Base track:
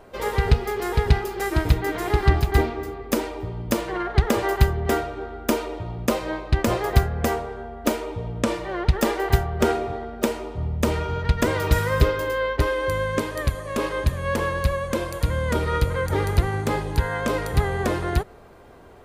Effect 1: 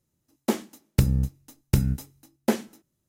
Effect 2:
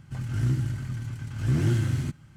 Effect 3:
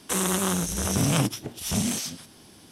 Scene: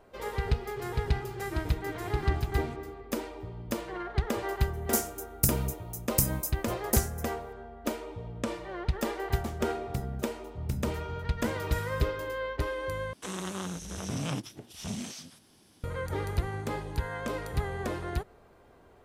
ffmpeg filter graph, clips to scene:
ffmpeg -i bed.wav -i cue0.wav -i cue1.wav -i cue2.wav -filter_complex "[1:a]asplit=2[link_01][link_02];[0:a]volume=-10dB[link_03];[2:a]alimiter=limit=-24dB:level=0:latency=1:release=71[link_04];[link_01]aexciter=amount=9.6:drive=1.9:freq=5100[link_05];[3:a]acrossover=split=7000[link_06][link_07];[link_07]acompressor=threshold=-44dB:ratio=4:attack=1:release=60[link_08];[link_06][link_08]amix=inputs=2:normalize=0[link_09];[link_03]asplit=2[link_10][link_11];[link_10]atrim=end=13.134[link_12];[link_09]atrim=end=2.71,asetpts=PTS-STARTPTS,volume=-10dB[link_13];[link_11]atrim=start=15.836[link_14];[link_04]atrim=end=2.36,asetpts=PTS-STARTPTS,volume=-12dB,afade=type=in:duration=0.004:curve=hsin,afade=type=out:start_time=2.356:duration=0.004:curve=hsin,adelay=650[link_15];[link_05]atrim=end=3.08,asetpts=PTS-STARTPTS,volume=-8.5dB,afade=type=in:duration=0.004:curve=hsin,afade=type=out:start_time=3.076:duration=0.004:curve=hsin,adelay=196245S[link_16];[link_02]atrim=end=3.08,asetpts=PTS-STARTPTS,volume=-13.5dB,afade=type=in:duration=0.004:curve=hsin,afade=type=out:start_time=3.076:duration=0.004:curve=hsin,adelay=8960[link_17];[link_12][link_13]acrossfade=duration=0.004:curve1=hsin:curve2=hsin[link_18];[link_18][link_14]acrossfade=duration=0.004:curve1=hsin:curve2=hsin[link_19];[link_19][link_15][link_16][link_17]amix=inputs=4:normalize=0" out.wav

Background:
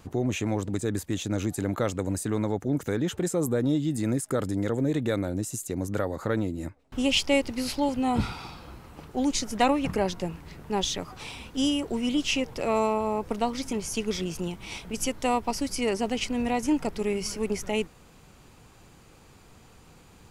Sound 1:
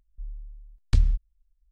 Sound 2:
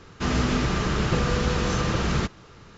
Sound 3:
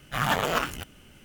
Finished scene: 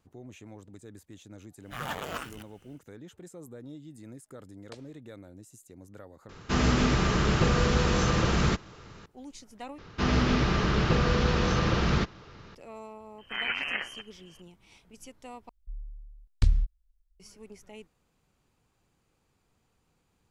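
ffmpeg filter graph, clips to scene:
ffmpeg -i bed.wav -i cue0.wav -i cue1.wav -i cue2.wav -filter_complex "[3:a]asplit=2[link_01][link_02];[1:a]asplit=2[link_03][link_04];[2:a]asplit=2[link_05][link_06];[0:a]volume=-19.5dB[link_07];[link_03]highpass=frequency=590:width_type=q:width=4.9[link_08];[link_06]lowpass=frequency=5700:width=0.5412,lowpass=frequency=5700:width=1.3066[link_09];[link_02]lowpass=frequency=2700:width_type=q:width=0.5098,lowpass=frequency=2700:width_type=q:width=0.6013,lowpass=frequency=2700:width_type=q:width=0.9,lowpass=frequency=2700:width_type=q:width=2.563,afreqshift=-3200[link_10];[link_07]asplit=4[link_11][link_12][link_13][link_14];[link_11]atrim=end=6.294[link_15];[link_05]atrim=end=2.77,asetpts=PTS-STARTPTS,volume=-0.5dB[link_16];[link_12]atrim=start=9.056:end=9.784[link_17];[link_09]atrim=end=2.77,asetpts=PTS-STARTPTS,volume=-1dB[link_18];[link_13]atrim=start=12.546:end=15.494[link_19];[link_04]atrim=end=1.71,asetpts=PTS-STARTPTS,volume=-2.5dB[link_20];[link_14]atrim=start=17.196[link_21];[link_01]atrim=end=1.24,asetpts=PTS-STARTPTS,volume=-10.5dB,afade=type=in:duration=0.1,afade=type=out:start_time=1.14:duration=0.1,adelay=1590[link_22];[link_08]atrim=end=1.71,asetpts=PTS-STARTPTS,volume=-11dB,afade=type=in:duration=0.004:curve=hsin,afade=type=out:start_time=1.706:duration=0.004:curve=hsin,adelay=3790[link_23];[link_10]atrim=end=1.24,asetpts=PTS-STARTPTS,volume=-6dB,afade=type=in:duration=0.004:curve=hsin,afade=type=out:start_time=1.236:duration=0.004:curve=hsin,adelay=13180[link_24];[link_15][link_16]acrossfade=duration=0.004:curve1=hsin:curve2=hsin[link_25];[link_25][link_17]acrossfade=duration=0.004:curve1=hsin:curve2=hsin[link_26];[link_26][link_18]acrossfade=duration=0.004:curve1=hsin:curve2=hsin[link_27];[link_27][link_19]acrossfade=duration=0.004:curve1=hsin:curve2=hsin[link_28];[link_28][link_20]acrossfade=duration=0.004:curve1=hsin:curve2=hsin[link_29];[link_29][link_21]acrossfade=duration=0.004:curve1=hsin:curve2=hsin[link_30];[link_30][link_22][link_23][link_24]amix=inputs=4:normalize=0" out.wav

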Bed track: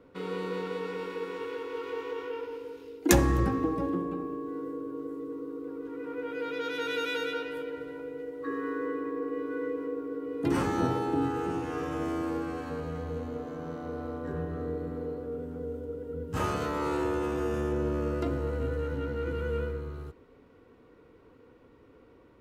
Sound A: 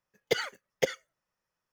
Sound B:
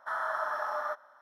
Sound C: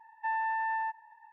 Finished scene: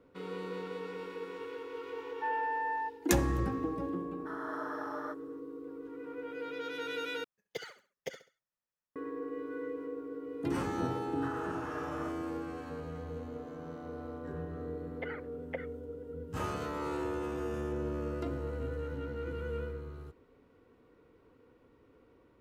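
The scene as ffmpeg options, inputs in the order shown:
ffmpeg -i bed.wav -i cue0.wav -i cue1.wav -i cue2.wav -filter_complex "[2:a]asplit=2[link_01][link_02];[1:a]asplit=2[link_03][link_04];[0:a]volume=-6dB[link_05];[3:a]lowpass=2200[link_06];[link_01]dynaudnorm=framelen=180:gausssize=3:maxgain=3.5dB[link_07];[link_03]aecho=1:1:67|134|201:0.224|0.0716|0.0229[link_08];[link_02]acompressor=threshold=-37dB:ratio=6:attack=3.2:release=140:knee=1:detection=peak[link_09];[link_04]asuperpass=centerf=1100:order=8:qfactor=0.61[link_10];[link_05]asplit=2[link_11][link_12];[link_11]atrim=end=7.244[link_13];[link_08]atrim=end=1.72,asetpts=PTS-STARTPTS,volume=-13.5dB[link_14];[link_12]atrim=start=8.956[link_15];[link_06]atrim=end=1.32,asetpts=PTS-STARTPTS,volume=-2dB,afade=type=in:duration=0.004:curve=hsin,afade=type=out:start_time=1.316:duration=0.004:curve=hsin,adelay=1980[link_16];[link_07]atrim=end=1.21,asetpts=PTS-STARTPTS,volume=-11dB,afade=type=in:duration=0.004:curve=hsin,afade=type=out:start_time=1.206:duration=0.004:curve=hsin,adelay=4190[link_17];[link_09]atrim=end=1.21,asetpts=PTS-STARTPTS,volume=-3dB,afade=type=in:duration=0.004:curve=hsin,afade=type=out:start_time=1.206:duration=0.004:curve=hsin,adelay=11160[link_18];[link_10]atrim=end=1.72,asetpts=PTS-STARTPTS,volume=-8.5dB,afade=type=in:duration=0.004:curve=hsin,afade=type=out:start_time=1.716:duration=0.004:curve=hsin,adelay=14710[link_19];[link_13][link_14]acrossfade=duration=0.004:curve1=hsin:curve2=hsin[link_20];[link_20][link_15]acrossfade=duration=0.004:curve1=hsin:curve2=hsin[link_21];[link_21][link_16][link_17][link_18][link_19]amix=inputs=5:normalize=0" out.wav

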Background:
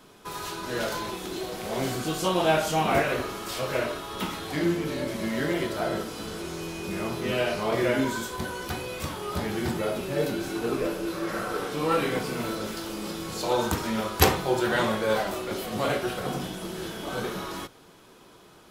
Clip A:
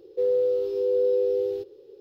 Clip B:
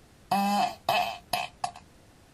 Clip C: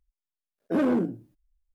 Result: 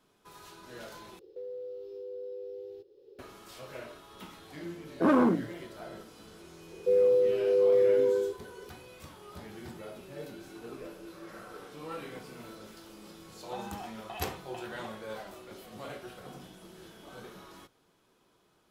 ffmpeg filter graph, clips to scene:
ffmpeg -i bed.wav -i cue0.wav -i cue1.wav -i cue2.wav -filter_complex "[1:a]asplit=2[link_01][link_02];[0:a]volume=-16dB[link_03];[link_01]acompressor=threshold=-43dB:ratio=2:attack=11:release=466:knee=1:detection=peak[link_04];[3:a]equalizer=frequency=1100:width_type=o:width=0.77:gain=10[link_05];[link_02]equalizer=frequency=450:width=1.5:gain=5[link_06];[2:a]aresample=8000,aresample=44100[link_07];[link_03]asplit=2[link_08][link_09];[link_08]atrim=end=1.194[link_10];[link_04]atrim=end=2,asetpts=PTS-STARTPTS,volume=-6dB[link_11];[link_09]atrim=start=3.186[link_12];[link_05]atrim=end=1.74,asetpts=PTS-STARTPTS,volume=-0.5dB,afade=type=in:duration=0.004:curve=hsin,afade=type=out:start_time=1.736:duration=0.004:curve=hsin,adelay=4300[link_13];[link_06]atrim=end=2,asetpts=PTS-STARTPTS,volume=-5dB,afade=type=in:duration=0.004:curve=hsin,afade=type=out:start_time=1.996:duration=0.004:curve=hsin,adelay=6690[link_14];[link_07]atrim=end=2.33,asetpts=PTS-STARTPTS,volume=-17.5dB,afade=type=in:duration=0.004:curve=hsin,afade=type=out:start_time=2.326:duration=0.004:curve=hsin,adelay=13210[link_15];[link_10][link_11]acrossfade=duration=0.004:curve1=hsin:curve2=hsin[link_16];[link_16][link_12]acrossfade=duration=0.004:curve1=hsin:curve2=hsin[link_17];[link_17][link_13][link_14][link_15]amix=inputs=4:normalize=0" out.wav

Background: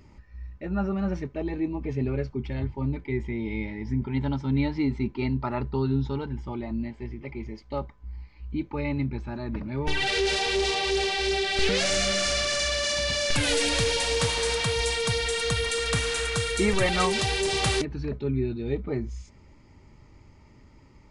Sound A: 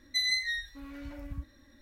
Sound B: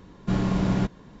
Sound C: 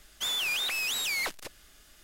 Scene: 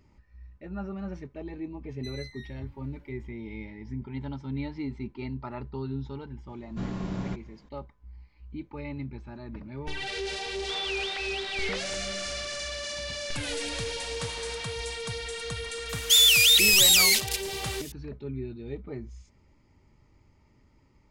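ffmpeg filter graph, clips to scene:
ffmpeg -i bed.wav -i cue0.wav -i cue1.wav -i cue2.wav -filter_complex "[3:a]asplit=2[link_01][link_02];[0:a]volume=-8.5dB[link_03];[link_01]aresample=8000,aresample=44100[link_04];[link_02]aexciter=amount=10.5:drive=7.5:freq=2100[link_05];[1:a]atrim=end=1.81,asetpts=PTS-STARTPTS,volume=-16.5dB,afade=type=in:duration=0.004:curve=hsin,afade=type=out:start_time=1.806:duration=0.004:curve=hsin,adelay=1890[link_06];[2:a]atrim=end=1.2,asetpts=PTS-STARTPTS,volume=-9.5dB,afade=type=in:duration=0.004:curve=hsin,afade=type=out:start_time=1.196:duration=0.004:curve=hsin,adelay=6490[link_07];[link_04]atrim=end=2.03,asetpts=PTS-STARTPTS,volume=-3.5dB,afade=type=in:duration=0.004:curve=hsin,afade=type=out:start_time=2.026:duration=0.004:curve=hsin,adelay=10470[link_08];[link_05]atrim=end=2.03,asetpts=PTS-STARTPTS,volume=-10.5dB,afade=type=in:duration=0.004:curve=hsin,afade=type=out:start_time=2.026:duration=0.004:curve=hsin,adelay=15890[link_09];[link_03][link_06][link_07][link_08][link_09]amix=inputs=5:normalize=0" out.wav

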